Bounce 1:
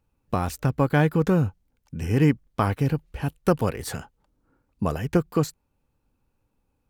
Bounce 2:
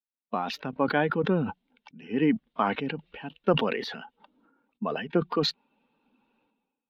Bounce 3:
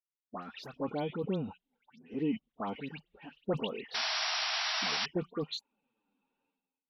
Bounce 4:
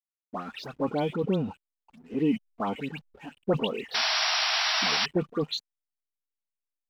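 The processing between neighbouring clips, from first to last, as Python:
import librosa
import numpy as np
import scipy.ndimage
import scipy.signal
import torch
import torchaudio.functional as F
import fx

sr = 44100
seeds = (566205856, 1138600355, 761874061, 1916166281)

y1 = fx.bin_expand(x, sr, power=1.5)
y1 = scipy.signal.sosfilt(scipy.signal.ellip(3, 1.0, 40, [210.0, 3500.0], 'bandpass', fs=sr, output='sos'), y1)
y1 = fx.sustainer(y1, sr, db_per_s=47.0)
y2 = fx.env_flanger(y1, sr, rest_ms=11.3, full_db=-23.5)
y2 = fx.dispersion(y2, sr, late='highs', ms=102.0, hz=2100.0)
y2 = fx.spec_paint(y2, sr, seeds[0], shape='noise', start_s=3.94, length_s=1.12, low_hz=620.0, high_hz=5800.0, level_db=-25.0)
y2 = y2 * 10.0 ** (-8.0 / 20.0)
y3 = fx.backlash(y2, sr, play_db=-56.5)
y3 = y3 * 10.0 ** (7.0 / 20.0)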